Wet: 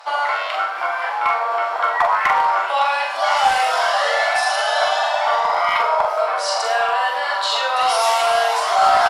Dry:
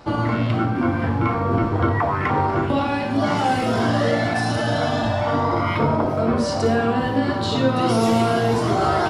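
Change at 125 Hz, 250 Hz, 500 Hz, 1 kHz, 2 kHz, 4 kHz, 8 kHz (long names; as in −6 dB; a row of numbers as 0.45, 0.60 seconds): below −30 dB, below −30 dB, 0.0 dB, +6.5 dB, +7.0 dB, +7.5 dB, +7.5 dB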